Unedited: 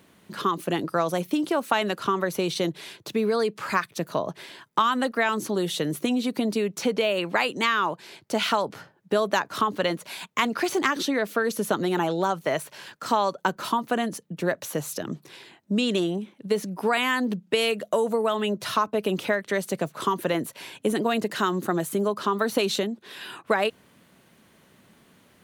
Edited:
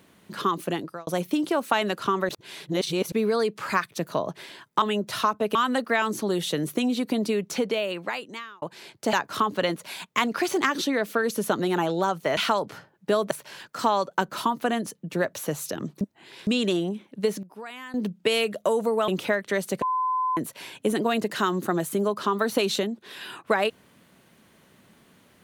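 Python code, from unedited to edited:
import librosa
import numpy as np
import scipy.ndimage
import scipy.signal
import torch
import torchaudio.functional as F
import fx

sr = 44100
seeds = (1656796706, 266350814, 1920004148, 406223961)

y = fx.edit(x, sr, fx.fade_out_span(start_s=0.64, length_s=0.43),
    fx.reverse_span(start_s=2.29, length_s=0.83),
    fx.fade_out_span(start_s=6.73, length_s=1.16),
    fx.move(start_s=8.4, length_s=0.94, to_s=12.58),
    fx.reverse_span(start_s=15.28, length_s=0.46),
    fx.fade_down_up(start_s=16.49, length_s=0.93, db=-16.0, fade_s=0.21, curve='log'),
    fx.move(start_s=18.35, length_s=0.73, to_s=4.82),
    fx.bleep(start_s=19.82, length_s=0.55, hz=1020.0, db=-22.0), tone=tone)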